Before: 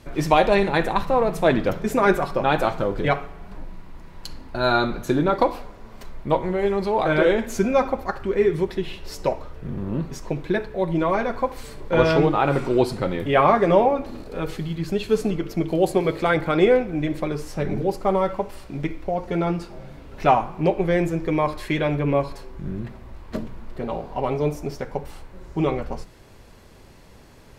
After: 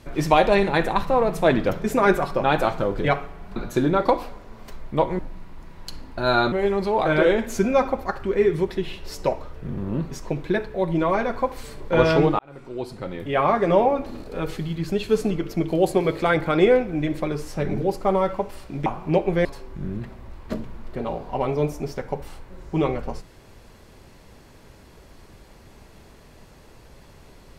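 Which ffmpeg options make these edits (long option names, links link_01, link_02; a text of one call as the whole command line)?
ffmpeg -i in.wav -filter_complex "[0:a]asplit=7[link_01][link_02][link_03][link_04][link_05][link_06][link_07];[link_01]atrim=end=3.562[link_08];[link_02]atrim=start=4.888:end=6.522[link_09];[link_03]atrim=start=3.558:end=4.892[link_10];[link_04]atrim=start=6.518:end=12.39,asetpts=PTS-STARTPTS,afade=type=out:start_time=5.868:duration=0.004:curve=hsin[link_11];[link_05]atrim=start=12.39:end=18.862,asetpts=PTS-STARTPTS,afade=type=in:duration=1.6[link_12];[link_06]atrim=start=20.378:end=20.972[link_13];[link_07]atrim=start=22.278[link_14];[link_08][link_09]acrossfade=duration=0.004:curve1=hsin:curve2=hsin[link_15];[link_15][link_10]acrossfade=duration=0.004:curve1=hsin:curve2=hsin[link_16];[link_11][link_12]concat=n=2:v=0:a=1[link_17];[link_16][link_17]acrossfade=duration=0.004:curve1=hsin:curve2=hsin[link_18];[link_18][link_13]acrossfade=duration=0.004:curve1=hsin:curve2=hsin[link_19];[link_19][link_14]acrossfade=duration=0.004:curve1=hsin:curve2=hsin" out.wav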